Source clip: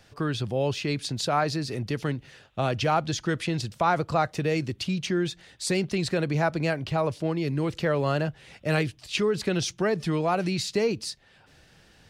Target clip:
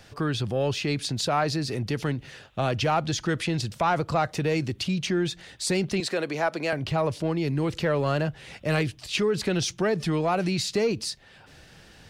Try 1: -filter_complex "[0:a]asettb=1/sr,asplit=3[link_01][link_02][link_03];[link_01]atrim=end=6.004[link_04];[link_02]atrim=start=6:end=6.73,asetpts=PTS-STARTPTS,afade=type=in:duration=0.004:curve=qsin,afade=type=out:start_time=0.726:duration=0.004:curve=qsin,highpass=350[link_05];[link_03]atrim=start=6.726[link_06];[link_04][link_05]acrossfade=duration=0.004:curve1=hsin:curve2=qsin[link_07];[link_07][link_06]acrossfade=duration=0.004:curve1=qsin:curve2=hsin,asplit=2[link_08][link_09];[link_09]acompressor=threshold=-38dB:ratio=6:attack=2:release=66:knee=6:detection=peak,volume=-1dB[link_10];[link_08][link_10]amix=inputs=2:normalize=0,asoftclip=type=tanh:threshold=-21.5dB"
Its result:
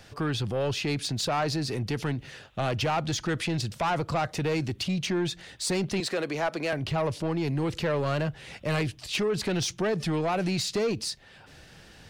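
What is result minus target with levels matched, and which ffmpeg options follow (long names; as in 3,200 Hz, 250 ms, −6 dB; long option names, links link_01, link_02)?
soft clipping: distortion +11 dB
-filter_complex "[0:a]asettb=1/sr,asplit=3[link_01][link_02][link_03];[link_01]atrim=end=6.004[link_04];[link_02]atrim=start=6:end=6.73,asetpts=PTS-STARTPTS,afade=type=in:duration=0.004:curve=qsin,afade=type=out:start_time=0.726:duration=0.004:curve=qsin,highpass=350[link_05];[link_03]atrim=start=6.726[link_06];[link_04][link_05]acrossfade=duration=0.004:curve1=hsin:curve2=qsin[link_07];[link_07][link_06]acrossfade=duration=0.004:curve1=qsin:curve2=hsin,asplit=2[link_08][link_09];[link_09]acompressor=threshold=-38dB:ratio=6:attack=2:release=66:knee=6:detection=peak,volume=-1dB[link_10];[link_08][link_10]amix=inputs=2:normalize=0,asoftclip=type=tanh:threshold=-13dB"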